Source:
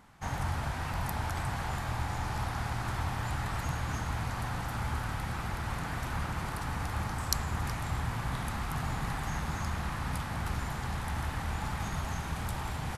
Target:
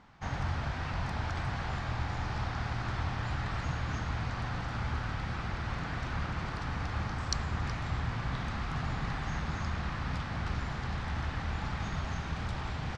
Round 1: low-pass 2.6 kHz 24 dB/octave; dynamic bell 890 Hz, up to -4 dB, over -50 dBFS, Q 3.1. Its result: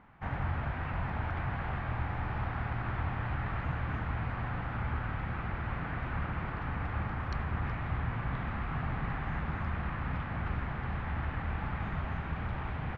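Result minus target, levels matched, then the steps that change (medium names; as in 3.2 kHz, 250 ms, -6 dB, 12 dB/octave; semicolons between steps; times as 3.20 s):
4 kHz band -10.0 dB
change: low-pass 5.6 kHz 24 dB/octave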